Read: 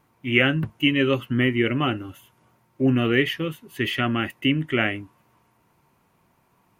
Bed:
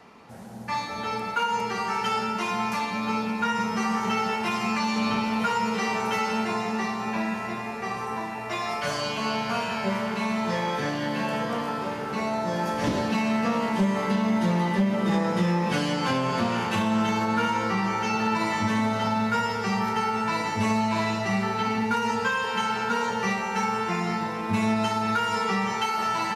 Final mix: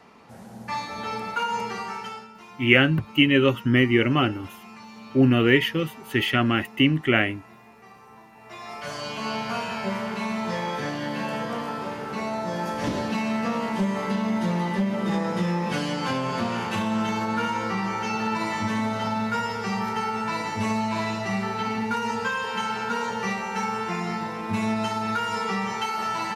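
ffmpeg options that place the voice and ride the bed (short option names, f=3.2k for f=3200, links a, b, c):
-filter_complex "[0:a]adelay=2350,volume=2dB[a];[1:a]volume=15.5dB,afade=t=out:st=1.6:d=0.68:silence=0.141254,afade=t=in:st=8.32:d=1.04:silence=0.149624[b];[a][b]amix=inputs=2:normalize=0"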